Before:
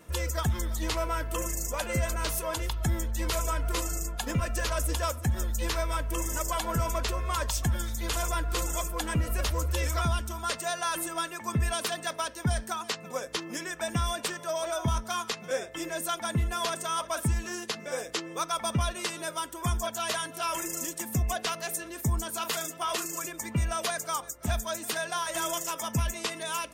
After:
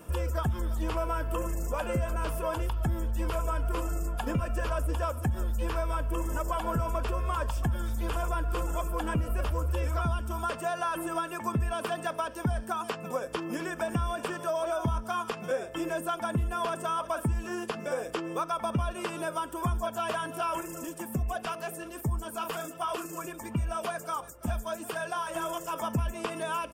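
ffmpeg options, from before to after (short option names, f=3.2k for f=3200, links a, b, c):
-filter_complex "[0:a]asplit=2[a][b];[b]afade=t=in:st=13.29:d=0.01,afade=t=out:st=13.78:d=0.01,aecho=0:1:250|500|750|1000|1250|1500|1750|2000:0.158489|0.110943|0.0776598|0.0543618|0.0380533|0.0266373|0.0186461|0.0130523[c];[a][c]amix=inputs=2:normalize=0,asplit=3[d][e][f];[d]afade=t=out:st=20.6:d=0.02[g];[e]flanger=delay=0.7:depth=5.9:regen=-44:speed=1.4:shape=triangular,afade=t=in:st=20.6:d=0.02,afade=t=out:st=25.72:d=0.02[h];[f]afade=t=in:st=25.72:d=0.02[i];[g][h][i]amix=inputs=3:normalize=0,acrossover=split=2800[j][k];[k]acompressor=threshold=-46dB:ratio=4:attack=1:release=60[l];[j][l]amix=inputs=2:normalize=0,equalizer=f=2k:t=o:w=0.33:g=-11,equalizer=f=4k:t=o:w=0.33:g=-11,equalizer=f=6.3k:t=o:w=0.33:g=-7,acompressor=threshold=-34dB:ratio=2.5,volume=5.5dB"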